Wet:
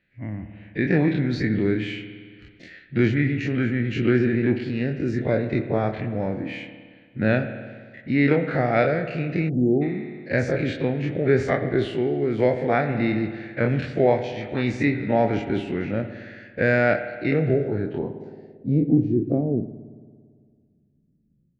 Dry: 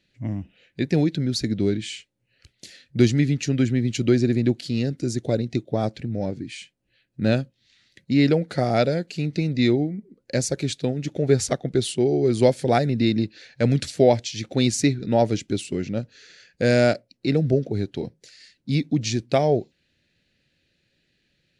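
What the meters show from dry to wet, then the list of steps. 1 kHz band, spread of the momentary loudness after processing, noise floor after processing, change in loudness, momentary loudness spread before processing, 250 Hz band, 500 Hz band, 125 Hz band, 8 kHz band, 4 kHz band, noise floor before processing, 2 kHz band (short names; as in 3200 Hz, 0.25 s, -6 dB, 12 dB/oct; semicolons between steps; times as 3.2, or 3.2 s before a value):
+0.5 dB, 14 LU, -62 dBFS, -0.5 dB, 11 LU, 0.0 dB, -0.5 dB, -1.0 dB, under -20 dB, -9.0 dB, -71 dBFS, +5.5 dB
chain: spectral dilation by 60 ms; spring tank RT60 1.8 s, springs 56 ms, chirp 30 ms, DRR 9 dB; AGC gain up to 5.5 dB; spectral delete 9.49–9.82, 820–6500 Hz; low-pass sweep 1900 Hz -> 210 Hz, 17.52–19.72; gain -6.5 dB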